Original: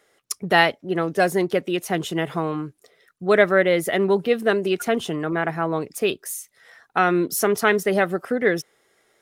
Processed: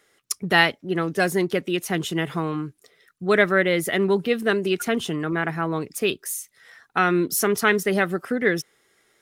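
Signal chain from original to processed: peaking EQ 640 Hz -7 dB 1.2 oct; trim +1.5 dB

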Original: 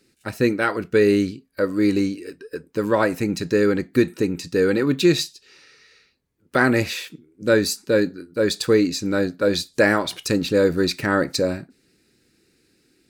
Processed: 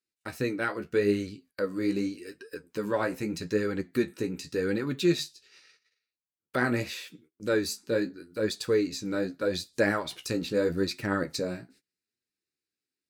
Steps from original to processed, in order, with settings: flange 0.82 Hz, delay 7.9 ms, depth 9.5 ms, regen +32%; gate -53 dBFS, range -27 dB; tape noise reduction on one side only encoder only; trim -5.5 dB

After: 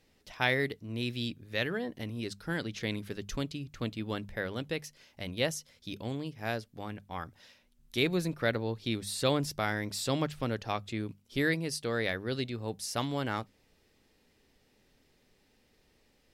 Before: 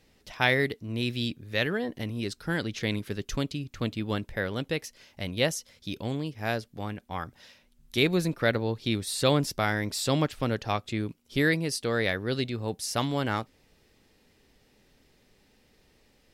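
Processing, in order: hum notches 50/100/150/200 Hz; trim -4.5 dB

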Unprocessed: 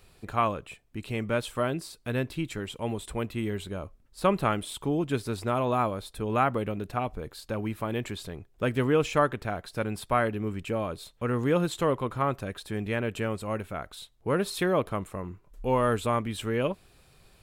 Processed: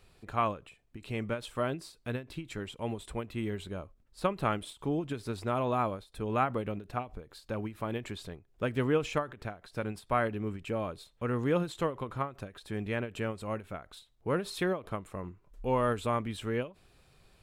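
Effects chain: treble shelf 9.6 kHz -8 dB; endings held to a fixed fall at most 200 dB/s; trim -3.5 dB

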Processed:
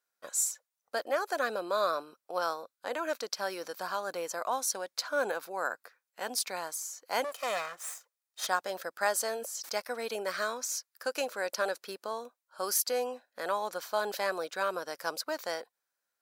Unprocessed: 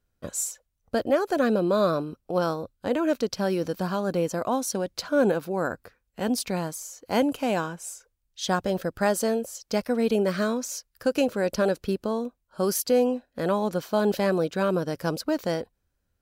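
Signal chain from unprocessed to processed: 7.24–8.47 s: comb filter that takes the minimum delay 1.6 ms; high-pass 870 Hz 12 dB/octave; peaking EQ 2.9 kHz -5.5 dB 0.52 oct; 9.21–9.78 s: decay stretcher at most 51 dB/s

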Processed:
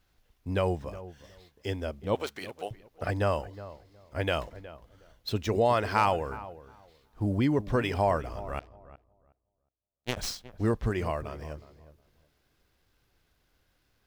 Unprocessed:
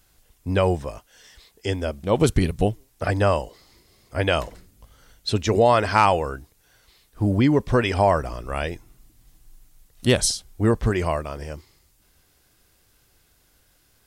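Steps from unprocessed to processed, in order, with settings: median filter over 5 samples; 2.15–2.71 s: high-pass 690 Hz 12 dB/octave; 8.59–10.17 s: power-law waveshaper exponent 3; filtered feedback delay 365 ms, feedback 20%, low-pass 1.3 kHz, level -15 dB; trim -7.5 dB

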